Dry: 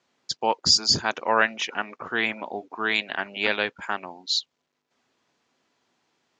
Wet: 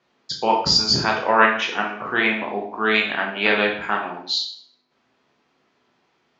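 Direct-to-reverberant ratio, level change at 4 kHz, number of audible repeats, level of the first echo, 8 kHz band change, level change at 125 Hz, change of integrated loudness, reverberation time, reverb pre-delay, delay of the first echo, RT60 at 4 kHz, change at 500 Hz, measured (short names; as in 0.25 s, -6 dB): -0.5 dB, +2.5 dB, none, none, -2.5 dB, +7.0 dB, +4.5 dB, 0.55 s, 5 ms, none, 0.55 s, +6.0 dB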